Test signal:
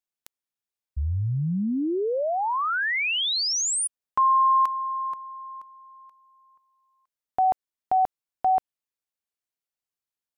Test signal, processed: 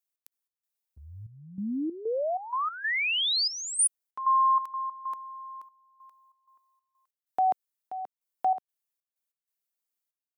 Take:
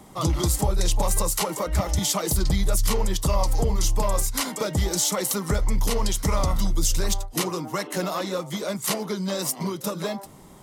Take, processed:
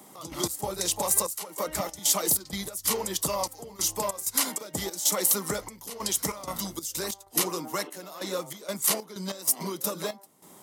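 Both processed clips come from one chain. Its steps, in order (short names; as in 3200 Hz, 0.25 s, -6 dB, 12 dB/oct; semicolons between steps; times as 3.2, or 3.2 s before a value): HPF 220 Hz 12 dB/oct; high shelf 7900 Hz +11.5 dB; step gate "x.x.xxxx..xx.x" 95 bpm -12 dB; gain -3 dB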